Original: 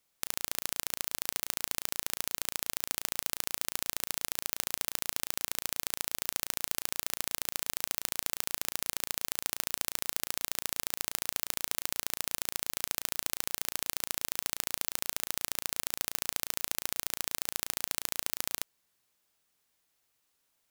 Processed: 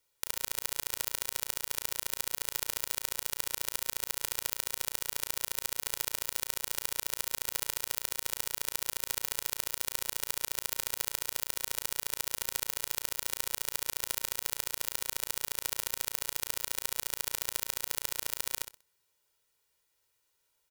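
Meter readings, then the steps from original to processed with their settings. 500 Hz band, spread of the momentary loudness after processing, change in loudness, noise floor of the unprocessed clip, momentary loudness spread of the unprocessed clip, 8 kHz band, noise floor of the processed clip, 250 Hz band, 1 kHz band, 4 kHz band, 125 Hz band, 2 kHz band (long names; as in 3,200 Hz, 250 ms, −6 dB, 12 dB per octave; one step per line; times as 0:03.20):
+1.0 dB, 1 LU, 0.0 dB, −77 dBFS, 1 LU, 0.0 dB, −76 dBFS, −5.0 dB, −0.5 dB, 0.0 dB, 0.0 dB, 0.0 dB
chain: comb filter 2.1 ms, depth 65%
on a send: repeating echo 63 ms, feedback 26%, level −11 dB
on the sum: level −2 dB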